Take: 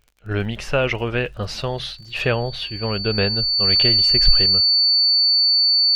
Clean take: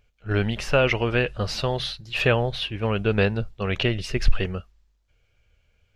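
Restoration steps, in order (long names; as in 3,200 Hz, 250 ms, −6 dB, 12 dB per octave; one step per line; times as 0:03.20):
click removal
notch filter 4,500 Hz, Q 30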